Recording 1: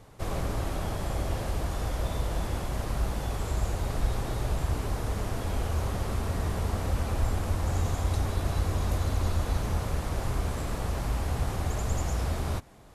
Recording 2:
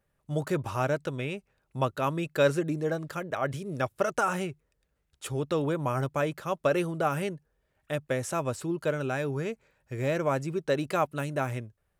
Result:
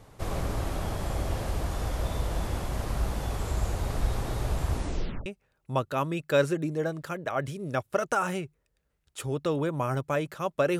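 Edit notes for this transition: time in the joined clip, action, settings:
recording 1
4.72 s: tape stop 0.54 s
5.26 s: go over to recording 2 from 1.32 s

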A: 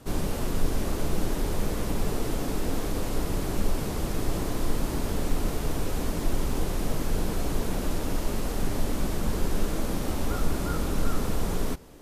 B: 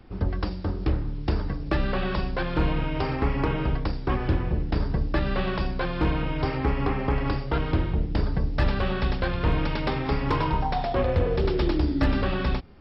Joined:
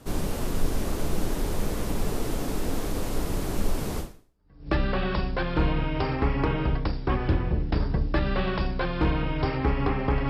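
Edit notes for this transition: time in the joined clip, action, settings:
A
4.35 s: go over to B from 1.35 s, crossfade 0.72 s exponential

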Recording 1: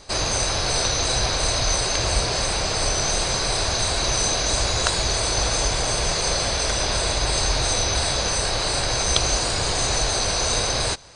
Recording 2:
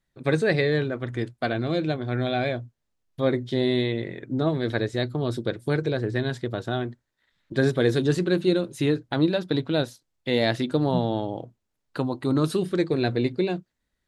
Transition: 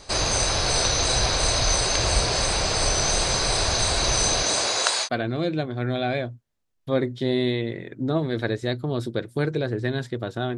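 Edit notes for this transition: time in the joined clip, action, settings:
recording 1
4.42–5.09 s: high-pass 140 Hz -> 970 Hz
5.06 s: go over to recording 2 from 1.37 s, crossfade 0.06 s

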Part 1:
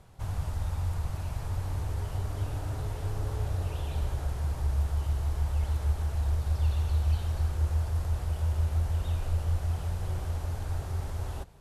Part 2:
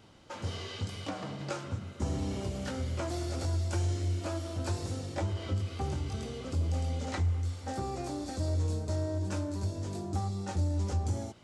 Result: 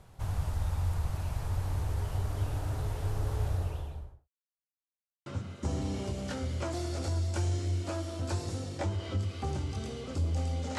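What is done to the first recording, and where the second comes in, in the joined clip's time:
part 1
3.44–4.29 s: studio fade out
4.29–5.26 s: mute
5.26 s: go over to part 2 from 1.63 s

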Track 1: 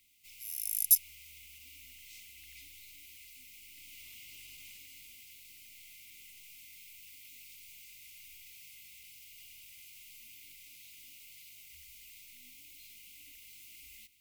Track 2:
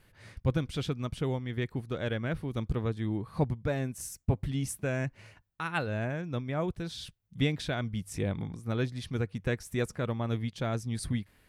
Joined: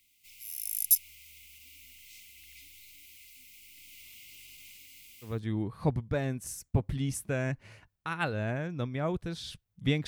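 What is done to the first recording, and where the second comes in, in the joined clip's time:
track 1
5.31 s: go over to track 2 from 2.85 s, crossfade 0.20 s

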